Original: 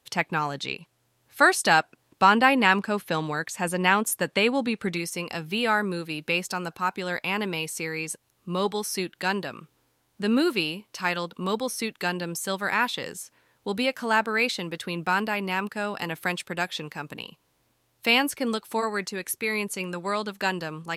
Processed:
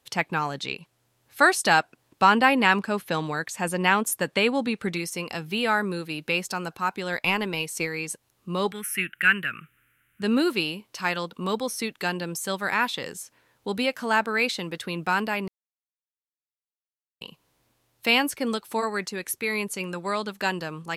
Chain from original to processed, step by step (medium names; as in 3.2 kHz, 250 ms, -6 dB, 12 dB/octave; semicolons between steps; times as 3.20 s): 7.12–7.96 s: transient shaper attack +11 dB, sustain -2 dB; 8.72–10.22 s: FFT filter 160 Hz 0 dB, 920 Hz -18 dB, 1.4 kHz +11 dB, 2.8 kHz +9 dB, 4.4 kHz -21 dB, 11 kHz +4 dB; 15.48–17.21 s: mute